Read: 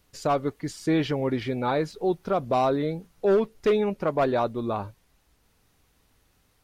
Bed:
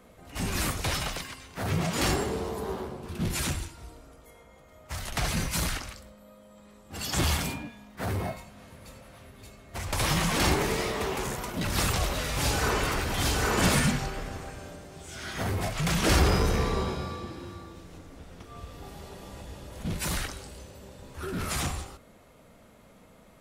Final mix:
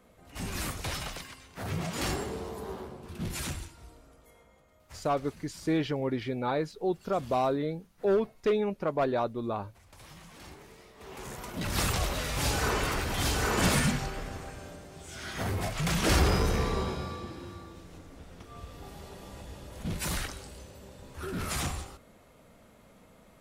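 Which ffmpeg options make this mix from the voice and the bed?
ffmpeg -i stem1.wav -i stem2.wav -filter_complex "[0:a]adelay=4800,volume=-4.5dB[link_01];[1:a]volume=17dB,afade=type=out:start_time=4.41:duration=0.76:silence=0.112202,afade=type=in:start_time=10.96:duration=0.81:silence=0.0749894[link_02];[link_01][link_02]amix=inputs=2:normalize=0" out.wav

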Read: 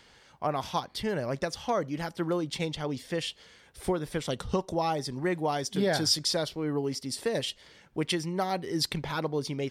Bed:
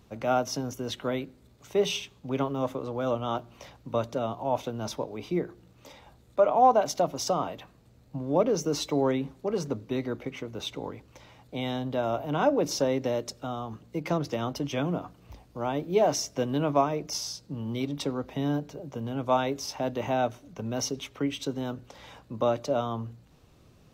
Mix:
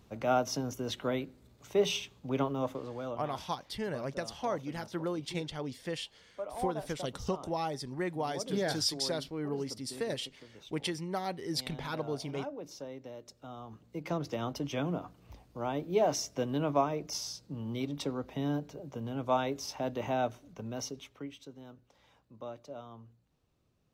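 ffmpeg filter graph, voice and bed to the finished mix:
ffmpeg -i stem1.wav -i stem2.wav -filter_complex "[0:a]adelay=2750,volume=-5.5dB[link_01];[1:a]volume=10.5dB,afade=type=out:start_time=2.46:duration=0.85:silence=0.177828,afade=type=in:start_time=13.17:duration=1.28:silence=0.223872,afade=type=out:start_time=20.32:duration=1.11:silence=0.223872[link_02];[link_01][link_02]amix=inputs=2:normalize=0" out.wav

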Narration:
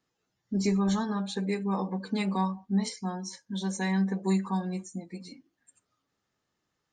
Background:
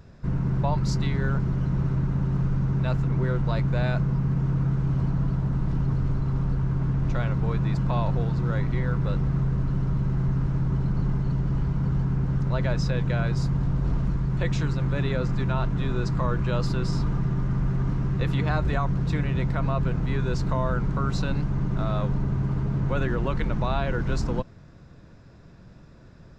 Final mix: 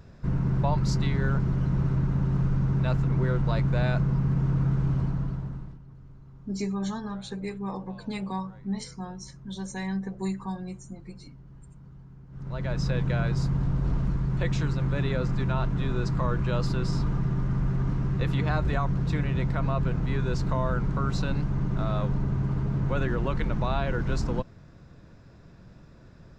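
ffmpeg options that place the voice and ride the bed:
ffmpeg -i stem1.wav -i stem2.wav -filter_complex "[0:a]adelay=5950,volume=-4dB[link_01];[1:a]volume=21.5dB,afade=type=out:start_time=4.85:duration=0.94:silence=0.0707946,afade=type=in:start_time=12.3:duration=0.61:silence=0.0794328[link_02];[link_01][link_02]amix=inputs=2:normalize=0" out.wav

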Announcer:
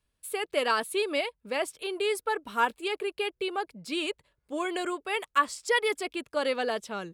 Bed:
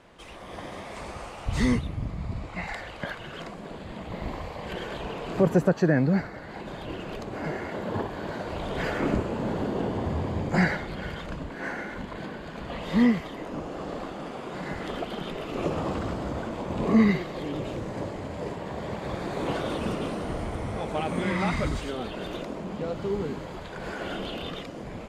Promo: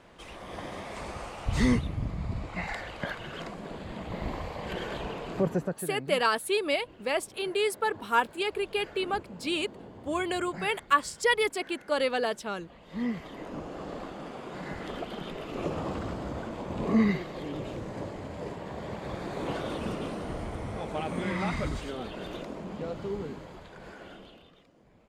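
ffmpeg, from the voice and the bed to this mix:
ffmpeg -i stem1.wav -i stem2.wav -filter_complex "[0:a]adelay=5550,volume=1dB[link_01];[1:a]volume=13.5dB,afade=type=out:start_time=4.97:duration=0.92:silence=0.133352,afade=type=in:start_time=12.88:duration=0.54:silence=0.199526,afade=type=out:start_time=22.86:duration=1.63:silence=0.112202[link_02];[link_01][link_02]amix=inputs=2:normalize=0" out.wav

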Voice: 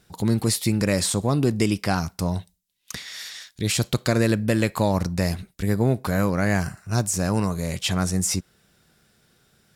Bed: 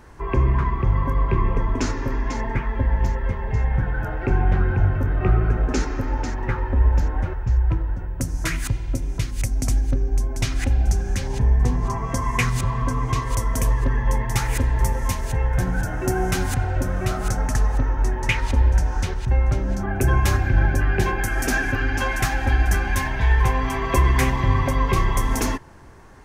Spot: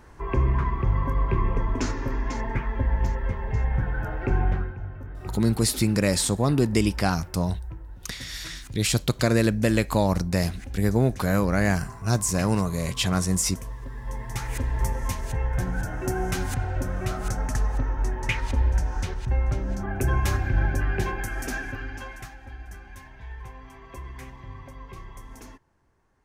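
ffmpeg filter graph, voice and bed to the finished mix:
ffmpeg -i stem1.wav -i stem2.wav -filter_complex "[0:a]adelay=5150,volume=-0.5dB[link_01];[1:a]volume=8dB,afade=type=out:start_time=4.44:duration=0.3:silence=0.223872,afade=type=in:start_time=13.92:duration=0.93:silence=0.266073,afade=type=out:start_time=20.85:duration=1.52:silence=0.141254[link_02];[link_01][link_02]amix=inputs=2:normalize=0" out.wav

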